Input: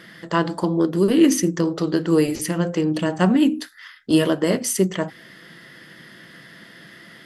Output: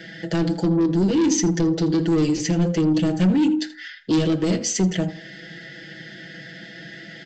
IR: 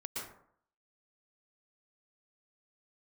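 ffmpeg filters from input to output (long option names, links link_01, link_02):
-filter_complex "[0:a]asuperstop=centerf=1100:order=8:qfactor=2.1,aecho=1:1:6.1:0.75,aresample=16000,asoftclip=type=tanh:threshold=-16dB,aresample=44100,asplit=2[link_01][link_02];[link_02]adelay=81,lowpass=frequency=4000:poles=1,volume=-16dB,asplit=2[link_03][link_04];[link_04]adelay=81,lowpass=frequency=4000:poles=1,volume=0.3,asplit=2[link_05][link_06];[link_06]adelay=81,lowpass=frequency=4000:poles=1,volume=0.3[link_07];[link_01][link_03][link_05][link_07]amix=inputs=4:normalize=0,acrossover=split=370|3000[link_08][link_09][link_10];[link_09]acompressor=threshold=-35dB:ratio=3[link_11];[link_08][link_11][link_10]amix=inputs=3:normalize=0,volume=3dB"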